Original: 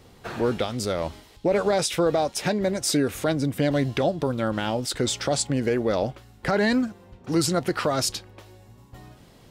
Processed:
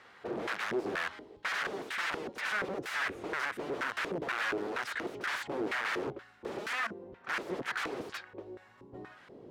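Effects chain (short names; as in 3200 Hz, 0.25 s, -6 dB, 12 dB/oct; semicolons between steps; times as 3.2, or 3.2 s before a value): wrapped overs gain 26.5 dB; sample leveller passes 1; LFO band-pass square 2.1 Hz 390–1600 Hz; gain +5 dB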